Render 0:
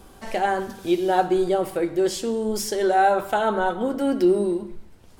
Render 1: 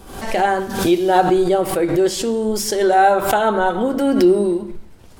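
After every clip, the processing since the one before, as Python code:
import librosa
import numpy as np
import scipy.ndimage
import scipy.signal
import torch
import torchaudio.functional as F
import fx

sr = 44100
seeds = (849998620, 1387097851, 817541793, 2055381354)

y = fx.pre_swell(x, sr, db_per_s=73.0)
y = y * librosa.db_to_amplitude(5.0)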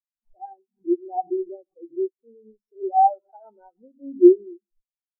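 y = fx.spectral_expand(x, sr, expansion=4.0)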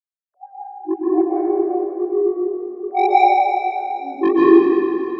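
y = fx.sine_speech(x, sr)
y = 10.0 ** (-14.0 / 20.0) * np.tanh(y / 10.0 ** (-14.0 / 20.0))
y = fx.rev_plate(y, sr, seeds[0], rt60_s=3.0, hf_ratio=0.85, predelay_ms=110, drr_db=-9.0)
y = y * librosa.db_to_amplitude(1.5)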